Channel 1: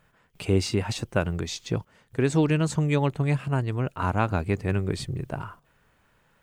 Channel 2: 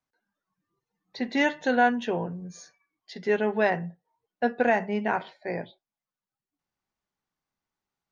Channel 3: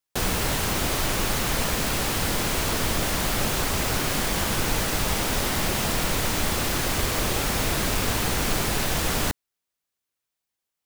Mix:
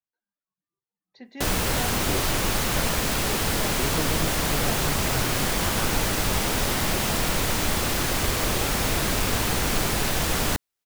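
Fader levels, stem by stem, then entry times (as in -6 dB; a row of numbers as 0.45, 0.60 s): -11.0, -14.5, +0.5 dB; 1.60, 0.00, 1.25 s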